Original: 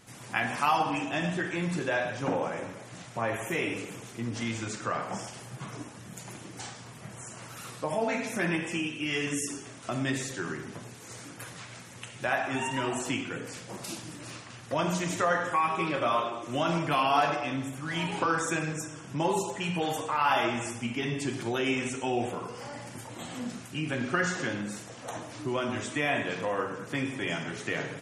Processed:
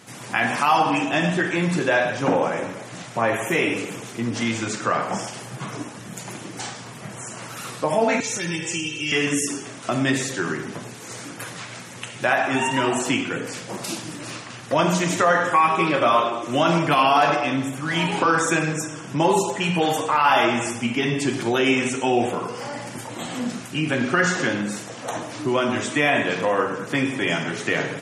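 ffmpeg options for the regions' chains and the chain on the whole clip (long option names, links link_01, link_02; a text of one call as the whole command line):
ffmpeg -i in.wav -filter_complex "[0:a]asettb=1/sr,asplit=3[link_01][link_02][link_03];[link_01]atrim=end=8.204[link_04];[link_02]atrim=start=8.2:end=9.12,asetpts=PTS-STARTPTS,afade=type=in:duration=0.004:curve=qsin,afade=type=out:start_time=0.916:duration=0.004:curve=qsin,aecho=1:1:2.2:0.73,atrim=end_sample=40572,acrossover=split=220|3000[link_05][link_06][link_07];[link_06]acompressor=threshold=-45dB:ratio=4:attack=3.2:release=140:knee=2.83:detection=peak[link_08];[link_05][link_08][link_07]amix=inputs=3:normalize=0,lowpass=frequency=6900:width_type=q:width=2.2[link_09];[link_03]atrim=start=9.116[link_10];[link_04][link_09]acrossfade=duration=0.004:curve1=hsin:curve2=qsin[link_11];[link_11][link_10]acrossfade=duration=0.004:curve1=qsin:curve2=hsin,highpass=130,highshelf=frequency=9900:gain=-3.5,alimiter=level_in=16dB:limit=-1dB:release=50:level=0:latency=1,volume=-6.5dB" out.wav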